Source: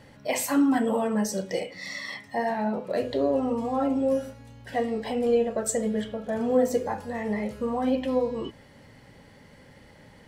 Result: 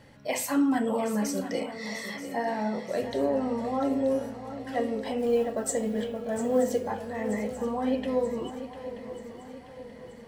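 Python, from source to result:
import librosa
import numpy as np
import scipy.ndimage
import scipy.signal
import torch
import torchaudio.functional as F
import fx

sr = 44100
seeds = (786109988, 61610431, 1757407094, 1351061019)

y = fx.mod_noise(x, sr, seeds[0], snr_db=34, at=(5.18, 6.91))
y = fx.echo_swing(y, sr, ms=931, ratio=3, feedback_pct=49, wet_db=-12.0)
y = y * 10.0 ** (-2.5 / 20.0)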